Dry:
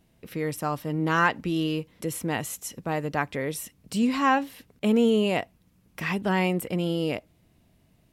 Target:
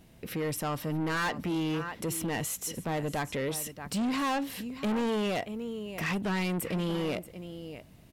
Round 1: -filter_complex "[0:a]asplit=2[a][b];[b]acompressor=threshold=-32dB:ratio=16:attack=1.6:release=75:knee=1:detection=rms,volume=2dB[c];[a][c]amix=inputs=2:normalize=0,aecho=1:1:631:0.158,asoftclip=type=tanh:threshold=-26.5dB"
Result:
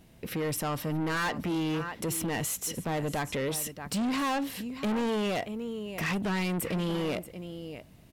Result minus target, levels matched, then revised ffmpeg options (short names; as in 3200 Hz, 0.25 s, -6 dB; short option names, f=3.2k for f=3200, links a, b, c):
compressor: peak gain reduction -9.5 dB
-filter_complex "[0:a]asplit=2[a][b];[b]acompressor=threshold=-42dB:ratio=16:attack=1.6:release=75:knee=1:detection=rms,volume=2dB[c];[a][c]amix=inputs=2:normalize=0,aecho=1:1:631:0.158,asoftclip=type=tanh:threshold=-26.5dB"